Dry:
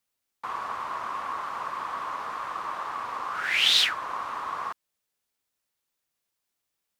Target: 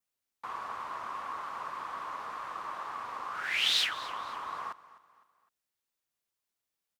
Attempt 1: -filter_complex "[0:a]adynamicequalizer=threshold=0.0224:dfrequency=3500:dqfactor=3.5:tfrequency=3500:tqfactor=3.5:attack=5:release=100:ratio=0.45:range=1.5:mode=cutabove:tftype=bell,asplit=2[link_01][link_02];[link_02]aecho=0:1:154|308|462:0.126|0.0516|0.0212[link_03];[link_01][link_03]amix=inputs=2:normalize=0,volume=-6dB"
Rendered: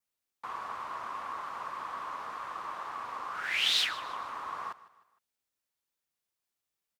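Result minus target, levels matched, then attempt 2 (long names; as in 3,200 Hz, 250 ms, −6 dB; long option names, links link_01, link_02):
echo 101 ms early
-filter_complex "[0:a]adynamicequalizer=threshold=0.0224:dfrequency=3500:dqfactor=3.5:tfrequency=3500:tqfactor=3.5:attack=5:release=100:ratio=0.45:range=1.5:mode=cutabove:tftype=bell,asplit=2[link_01][link_02];[link_02]aecho=0:1:255|510|765:0.126|0.0516|0.0212[link_03];[link_01][link_03]amix=inputs=2:normalize=0,volume=-6dB"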